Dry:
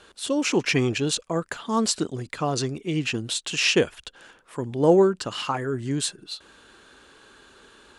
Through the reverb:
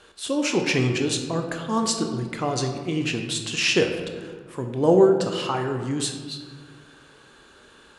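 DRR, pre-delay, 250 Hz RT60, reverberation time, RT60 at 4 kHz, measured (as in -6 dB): 4.0 dB, 16 ms, 2.1 s, 1.6 s, 0.85 s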